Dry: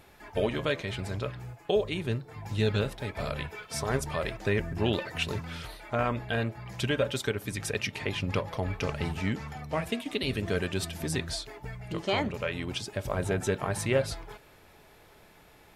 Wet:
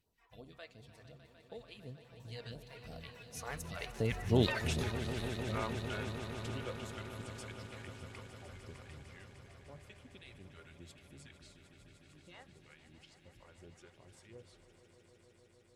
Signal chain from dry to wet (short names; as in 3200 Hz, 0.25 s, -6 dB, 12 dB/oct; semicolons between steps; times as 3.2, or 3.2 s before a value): Doppler pass-by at 4.58, 36 m/s, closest 9.9 m; phaser stages 2, 2.8 Hz, lowest notch 150–2200 Hz; swelling echo 0.151 s, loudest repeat 5, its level -14 dB; gain +2 dB